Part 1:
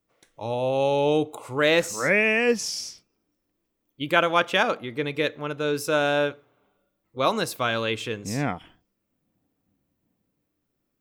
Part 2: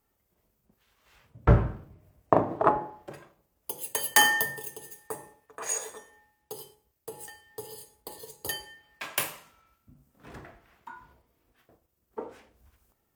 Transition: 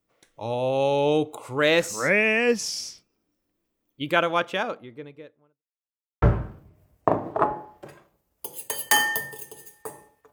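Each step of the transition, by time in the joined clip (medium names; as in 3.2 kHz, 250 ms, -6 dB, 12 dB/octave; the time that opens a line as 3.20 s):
part 1
3.88–5.63 s: studio fade out
5.63–6.22 s: mute
6.22 s: go over to part 2 from 1.47 s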